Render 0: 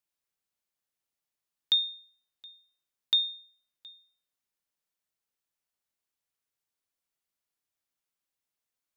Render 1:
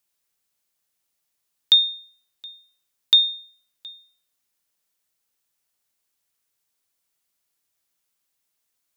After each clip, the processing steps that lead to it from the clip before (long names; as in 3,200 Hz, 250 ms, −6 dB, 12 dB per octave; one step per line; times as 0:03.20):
high-shelf EQ 3,900 Hz +6 dB
level +7 dB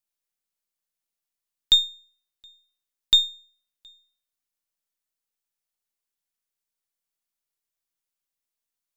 gain on one half-wave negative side −3 dB
expander for the loud parts 1.5 to 1, over −31 dBFS